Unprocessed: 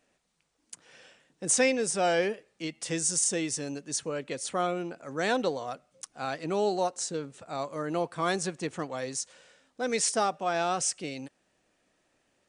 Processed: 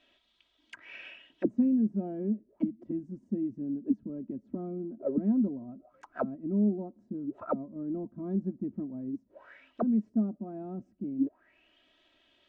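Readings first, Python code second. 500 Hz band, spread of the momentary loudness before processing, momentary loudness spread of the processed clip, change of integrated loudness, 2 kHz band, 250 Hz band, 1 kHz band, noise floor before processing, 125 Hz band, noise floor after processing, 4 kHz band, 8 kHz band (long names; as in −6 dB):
−8.0 dB, 13 LU, 14 LU, −3.0 dB, below −15 dB, +6.5 dB, −14.5 dB, −74 dBFS, +2.0 dB, −71 dBFS, below −20 dB, below −40 dB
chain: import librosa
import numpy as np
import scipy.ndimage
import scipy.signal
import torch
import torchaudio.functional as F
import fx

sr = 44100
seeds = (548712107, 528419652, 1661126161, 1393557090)

y = x + 0.77 * np.pad(x, (int(3.1 * sr / 1000.0), 0))[:len(x)]
y = fx.envelope_lowpass(y, sr, base_hz=210.0, top_hz=3500.0, q=7.1, full_db=-31.0, direction='down')
y = F.gain(torch.from_numpy(y), -1.5).numpy()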